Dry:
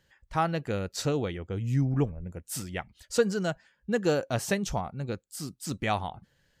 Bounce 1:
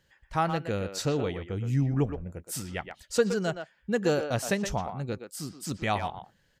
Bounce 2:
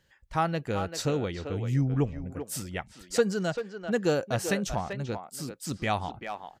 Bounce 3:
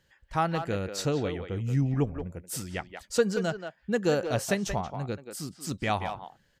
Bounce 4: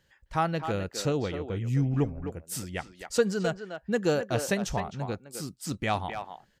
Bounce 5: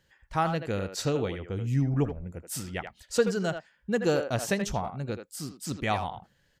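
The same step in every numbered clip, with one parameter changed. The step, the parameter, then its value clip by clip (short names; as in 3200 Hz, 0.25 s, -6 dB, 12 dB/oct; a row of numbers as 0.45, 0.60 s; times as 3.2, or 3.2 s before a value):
speakerphone echo, time: 120, 390, 180, 260, 80 ms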